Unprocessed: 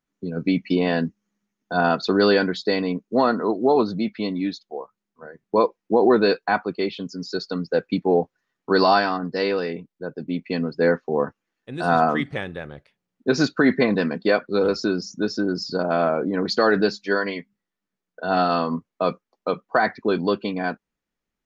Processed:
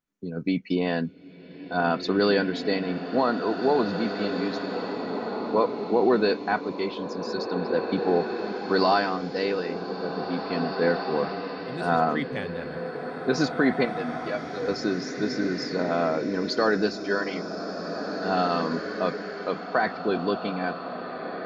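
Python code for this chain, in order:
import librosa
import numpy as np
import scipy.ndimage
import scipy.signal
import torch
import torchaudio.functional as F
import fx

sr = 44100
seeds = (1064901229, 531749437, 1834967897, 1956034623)

y = fx.stiff_resonator(x, sr, f0_hz=71.0, decay_s=0.24, stiffness=0.03, at=(13.85, 14.68))
y = fx.rev_bloom(y, sr, seeds[0], attack_ms=2140, drr_db=5.0)
y = y * 10.0 ** (-4.5 / 20.0)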